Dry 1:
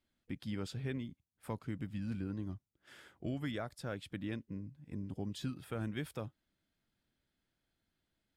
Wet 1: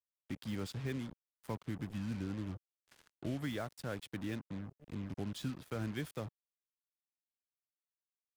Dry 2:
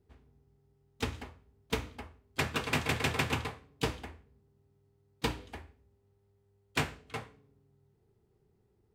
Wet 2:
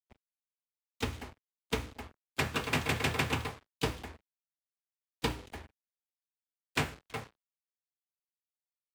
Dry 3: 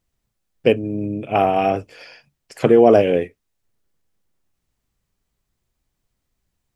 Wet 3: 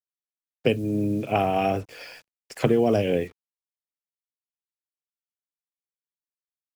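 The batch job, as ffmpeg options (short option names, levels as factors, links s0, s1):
-filter_complex "[0:a]acrusher=bits=7:mix=0:aa=0.5,acrossover=split=200|3000[s0][s1][s2];[s1]acompressor=threshold=0.1:ratio=6[s3];[s0][s3][s2]amix=inputs=3:normalize=0"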